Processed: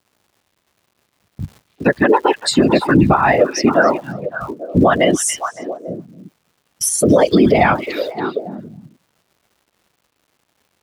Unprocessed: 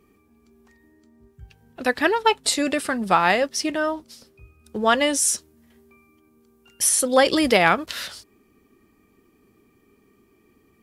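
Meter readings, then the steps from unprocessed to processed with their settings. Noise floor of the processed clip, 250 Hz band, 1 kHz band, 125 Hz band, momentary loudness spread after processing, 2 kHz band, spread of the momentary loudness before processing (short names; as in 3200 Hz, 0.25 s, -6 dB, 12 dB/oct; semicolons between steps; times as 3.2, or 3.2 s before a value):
-68 dBFS, +10.5 dB, +5.0 dB, +17.5 dB, 18 LU, +3.5 dB, 11 LU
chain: per-bin expansion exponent 2; high shelf 3600 Hz -11 dB; compressor, threshold -28 dBFS, peak gain reduction 13.5 dB; whisperiser; crackle 360/s -50 dBFS; tilt shelf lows +4 dB, about 1400 Hz; gate -57 dBFS, range -15 dB; HPF 52 Hz; delay with a stepping band-pass 0.281 s, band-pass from 3000 Hz, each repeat -1.4 oct, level -7 dB; maximiser +20.5 dB; gain -1.5 dB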